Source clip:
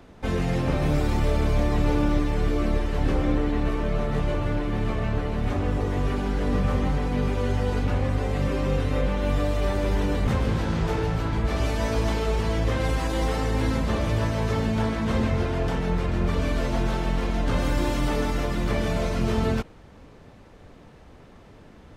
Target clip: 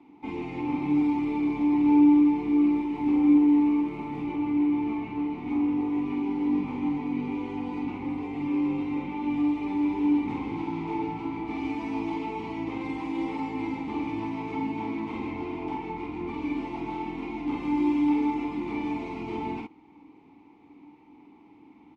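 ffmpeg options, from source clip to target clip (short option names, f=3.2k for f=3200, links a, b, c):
-filter_complex "[0:a]lowshelf=f=180:g=-4.5,asettb=1/sr,asplit=3[a][b][c];[a]atrim=end=2.724[d];[b]atrim=start=2.72:end=4.22,asetpts=PTS-STARTPTS,afade=t=in:d=0.004:c=qsin,afade=t=out:st=1.496:d=0.004:c=qsin,acrusher=bits=6:mode=log:mix=0:aa=0.000001[e];[c]atrim=start=4.216[f];[d][e]acrossfade=d=0.004:c1=hsin:c2=qsin[g];[g][f]acrossfade=d=0.004:c1=qsin:c2=hsin,asplit=3[h][i][j];[h]bandpass=f=300:t=q:w=8,volume=0dB[k];[i]bandpass=f=870:t=q:w=8,volume=-6dB[l];[j]bandpass=f=2.24k:t=q:w=8,volume=-9dB[m];[k][l][m]amix=inputs=3:normalize=0,asplit=2[n][o];[o]adelay=48,volume=-3dB[p];[n][p]amix=inputs=2:normalize=0,volume=7dB"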